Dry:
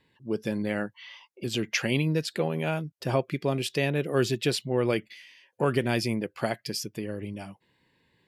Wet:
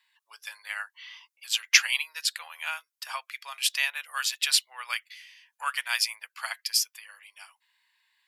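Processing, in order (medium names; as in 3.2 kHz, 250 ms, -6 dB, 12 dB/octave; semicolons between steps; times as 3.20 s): steep high-pass 1 kHz 36 dB/octave; treble shelf 5.1 kHz +7 dB; upward expansion 1.5:1, over -40 dBFS; trim +8.5 dB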